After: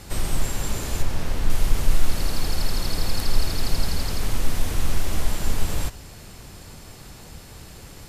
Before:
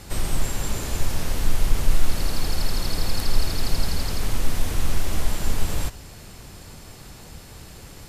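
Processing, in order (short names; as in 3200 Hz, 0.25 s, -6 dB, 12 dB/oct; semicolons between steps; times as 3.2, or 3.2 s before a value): 1.02–1.5 high shelf 4600 Hz -8 dB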